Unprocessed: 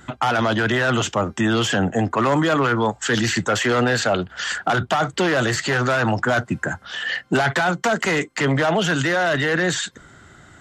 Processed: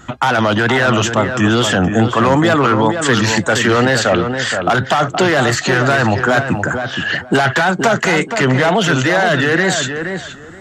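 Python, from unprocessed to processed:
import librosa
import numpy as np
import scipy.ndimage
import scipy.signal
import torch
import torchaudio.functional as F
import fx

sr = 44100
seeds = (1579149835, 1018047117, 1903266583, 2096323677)

y = fx.wow_flutter(x, sr, seeds[0], rate_hz=2.1, depth_cents=89.0)
y = fx.echo_filtered(y, sr, ms=471, feedback_pct=19, hz=2300.0, wet_db=-6.5)
y = y * librosa.db_to_amplitude(5.5)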